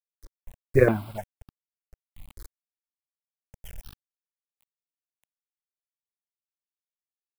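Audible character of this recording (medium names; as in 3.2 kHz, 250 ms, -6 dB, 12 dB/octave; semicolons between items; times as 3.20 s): a quantiser's noise floor 8-bit, dither none; random-step tremolo 3.5 Hz; notches that jump at a steady rate 3.4 Hz 730–2100 Hz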